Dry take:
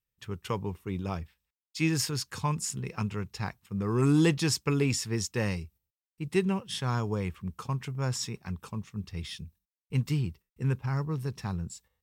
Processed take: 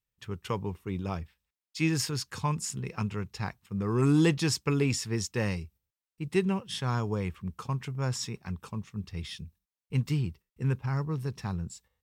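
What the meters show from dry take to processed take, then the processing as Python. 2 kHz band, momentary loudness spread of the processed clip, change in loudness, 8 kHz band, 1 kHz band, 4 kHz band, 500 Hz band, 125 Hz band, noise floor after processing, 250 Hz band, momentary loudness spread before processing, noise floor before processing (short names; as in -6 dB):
0.0 dB, 12 LU, 0.0 dB, -1.5 dB, 0.0 dB, -1.0 dB, 0.0 dB, 0.0 dB, under -85 dBFS, 0.0 dB, 12 LU, under -85 dBFS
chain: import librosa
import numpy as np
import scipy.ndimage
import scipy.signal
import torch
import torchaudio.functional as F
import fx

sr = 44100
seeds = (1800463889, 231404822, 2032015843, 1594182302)

y = fx.high_shelf(x, sr, hz=8600.0, db=-4.0)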